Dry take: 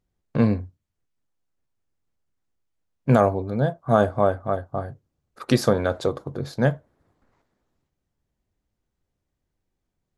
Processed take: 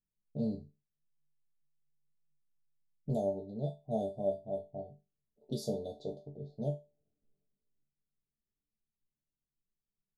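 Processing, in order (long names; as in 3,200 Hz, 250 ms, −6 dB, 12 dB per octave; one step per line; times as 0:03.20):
low-pass that shuts in the quiet parts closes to 380 Hz, open at −18 dBFS
0:00.54–0:03.09: parametric band 150 Hz +15 dB 0.35 octaves
elliptic band-stop filter 700–3,800 Hz, stop band 40 dB
resonators tuned to a chord D3 sus4, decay 0.26 s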